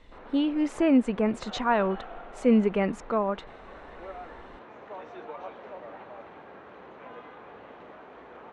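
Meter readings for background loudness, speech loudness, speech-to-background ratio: −45.0 LKFS, −26.0 LKFS, 19.0 dB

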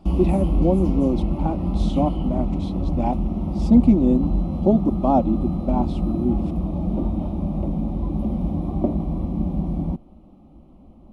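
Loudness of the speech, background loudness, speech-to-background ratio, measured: −22.0 LKFS, −25.0 LKFS, 3.0 dB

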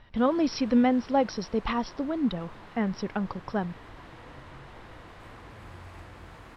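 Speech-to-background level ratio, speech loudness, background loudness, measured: 20.0 dB, −28.0 LKFS, −48.0 LKFS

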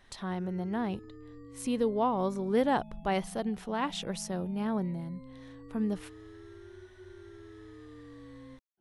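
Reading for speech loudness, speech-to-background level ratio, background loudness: −32.5 LKFS, 17.5 dB, −50.0 LKFS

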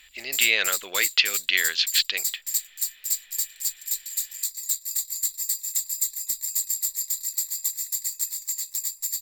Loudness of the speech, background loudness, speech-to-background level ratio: −23.0 LKFS, −26.5 LKFS, 3.5 dB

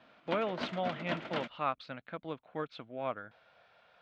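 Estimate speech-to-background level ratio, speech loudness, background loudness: 2.5 dB, −38.5 LKFS, −41.0 LKFS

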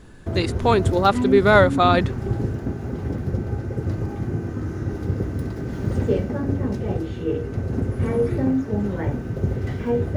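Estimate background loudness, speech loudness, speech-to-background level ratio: −25.0 LKFS, −18.5 LKFS, 6.5 dB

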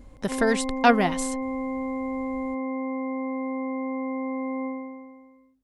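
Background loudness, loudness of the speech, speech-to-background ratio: −30.5 LKFS, −24.0 LKFS, 6.5 dB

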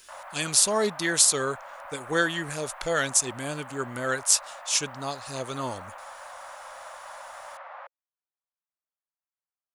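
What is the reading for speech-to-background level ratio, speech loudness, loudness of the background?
17.5 dB, −25.5 LKFS, −43.0 LKFS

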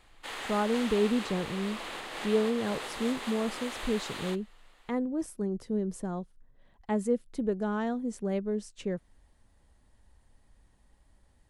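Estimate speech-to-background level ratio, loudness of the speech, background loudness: 6.5 dB, −32.0 LKFS, −38.5 LKFS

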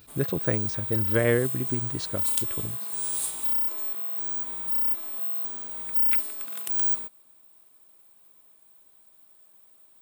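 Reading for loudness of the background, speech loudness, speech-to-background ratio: −25.0 LKFS, −29.0 LKFS, −4.0 dB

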